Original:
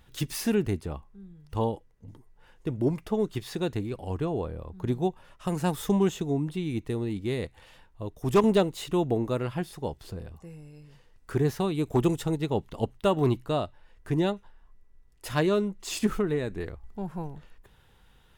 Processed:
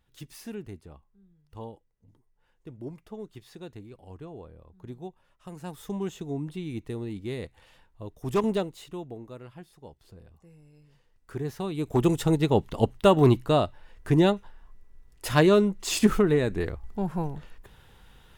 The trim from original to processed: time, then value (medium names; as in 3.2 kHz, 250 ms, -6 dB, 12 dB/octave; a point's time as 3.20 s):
5.54 s -13 dB
6.43 s -4 dB
8.50 s -4 dB
9.15 s -14.5 dB
9.83 s -14.5 dB
10.75 s -7.5 dB
11.44 s -7.5 dB
12.31 s +5.5 dB